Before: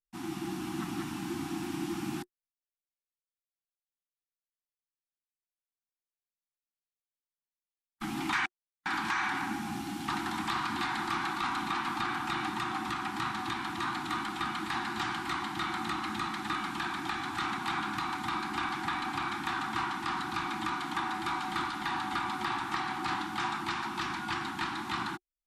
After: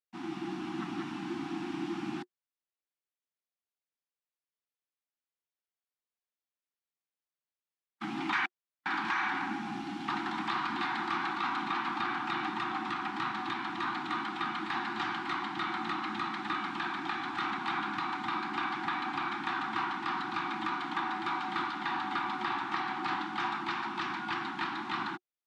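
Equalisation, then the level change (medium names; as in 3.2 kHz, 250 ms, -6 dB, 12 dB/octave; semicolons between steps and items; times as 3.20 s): band-pass 180–3900 Hz; 0.0 dB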